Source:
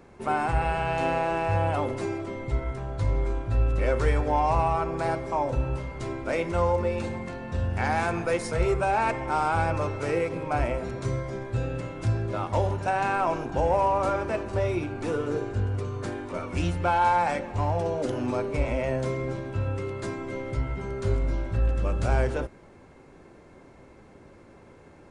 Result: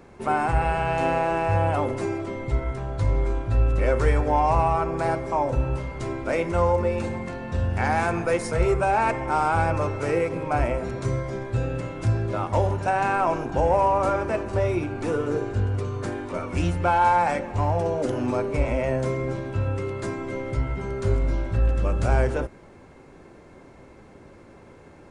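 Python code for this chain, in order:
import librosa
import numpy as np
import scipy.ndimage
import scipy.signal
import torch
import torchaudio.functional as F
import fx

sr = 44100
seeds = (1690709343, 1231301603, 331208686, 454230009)

y = fx.dynamic_eq(x, sr, hz=3800.0, q=1.4, threshold_db=-49.0, ratio=4.0, max_db=-4)
y = y * 10.0 ** (3.0 / 20.0)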